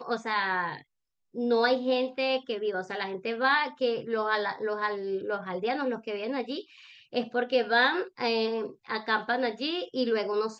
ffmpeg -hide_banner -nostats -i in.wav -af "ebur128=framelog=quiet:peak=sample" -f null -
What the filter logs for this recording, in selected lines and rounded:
Integrated loudness:
  I:         -28.8 LUFS
  Threshold: -39.0 LUFS
Loudness range:
  LRA:         3.5 LU
  Threshold: -49.0 LUFS
  LRA low:   -31.3 LUFS
  LRA high:  -27.8 LUFS
Sample peak:
  Peak:      -11.7 dBFS